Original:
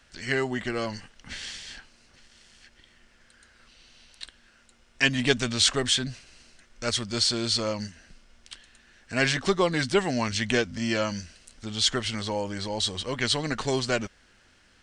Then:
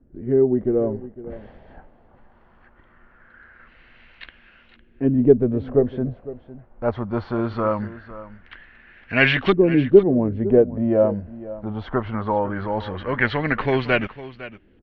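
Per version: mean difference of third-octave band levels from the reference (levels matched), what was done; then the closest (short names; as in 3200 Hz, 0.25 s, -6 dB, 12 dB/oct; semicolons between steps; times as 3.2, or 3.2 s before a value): 10.5 dB: notch 5000 Hz, Q 29; LFO low-pass saw up 0.21 Hz 310–3000 Hz; air absorption 280 m; on a send: echo 0.506 s -16 dB; on the sum: gain +6.5 dB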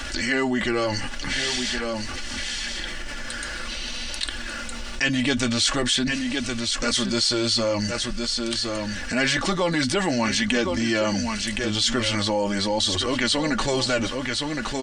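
8.0 dB: comb 3.5 ms, depth 48%; echo 1.066 s -14 dB; flange 0.46 Hz, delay 2.5 ms, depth 5.1 ms, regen -38%; fast leveller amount 70%; gain +1.5 dB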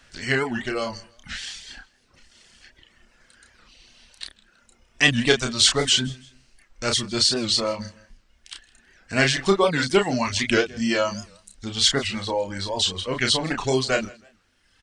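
3.5 dB: reverb removal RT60 1.4 s; doubler 31 ms -5 dB; feedback echo 0.161 s, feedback 34%, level -23 dB; record warp 78 rpm, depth 160 cents; gain +4 dB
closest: third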